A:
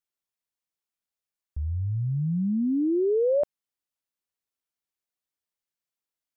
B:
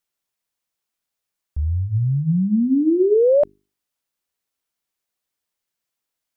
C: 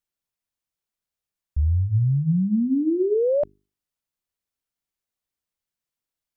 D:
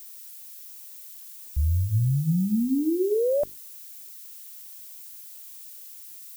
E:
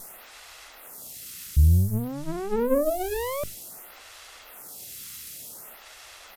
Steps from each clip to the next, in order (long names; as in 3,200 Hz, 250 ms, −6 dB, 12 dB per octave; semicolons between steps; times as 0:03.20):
mains-hum notches 50/100/150/200/250/300/350/400 Hz; level +8 dB
low-shelf EQ 170 Hz +10 dB; level −7 dB
background noise violet −41 dBFS; level −2.5 dB
lower of the sound and its delayed copy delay 1.5 ms; downsampling to 32,000 Hz; phaser with staggered stages 0.54 Hz; level +8.5 dB